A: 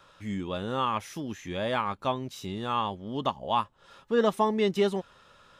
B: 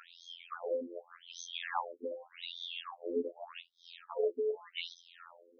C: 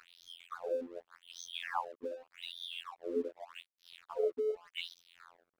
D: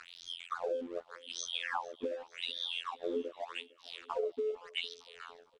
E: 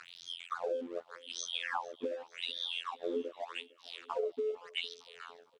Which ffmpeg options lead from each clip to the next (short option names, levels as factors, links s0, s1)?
-af "afftfilt=real='hypot(re,im)*cos(PI*b)':imag='0':win_size=2048:overlap=0.75,acompressor=threshold=0.0158:ratio=6,afftfilt=real='re*between(b*sr/1024,360*pow(4600/360,0.5+0.5*sin(2*PI*0.85*pts/sr))/1.41,360*pow(4600/360,0.5+0.5*sin(2*PI*0.85*pts/sr))*1.41)':imag='im*between(b*sr/1024,360*pow(4600/360,0.5+0.5*sin(2*PI*0.85*pts/sr))/1.41,360*pow(4600/360,0.5+0.5*sin(2*PI*0.85*pts/sr))*1.41)':win_size=1024:overlap=0.75,volume=3.35"
-af "aeval=exprs='sgn(val(0))*max(abs(val(0))-0.00133,0)':c=same"
-af "lowpass=f=8600:w=0.5412,lowpass=f=8600:w=1.3066,acompressor=threshold=0.00891:ratio=6,aecho=1:1:455|910|1365|1820:0.075|0.0427|0.0244|0.0139,volume=2.66"
-af "highpass=110"